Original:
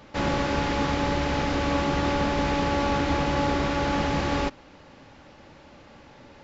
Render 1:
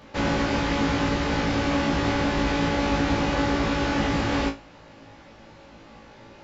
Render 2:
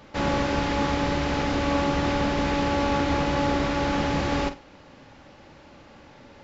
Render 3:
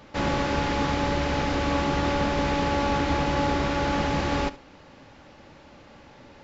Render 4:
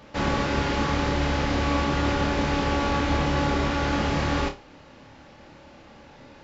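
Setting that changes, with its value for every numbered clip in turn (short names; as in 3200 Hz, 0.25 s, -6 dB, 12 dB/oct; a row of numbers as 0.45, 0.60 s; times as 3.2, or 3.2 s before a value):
flutter echo, walls apart: 3.1, 7.9, 12.3, 4.7 m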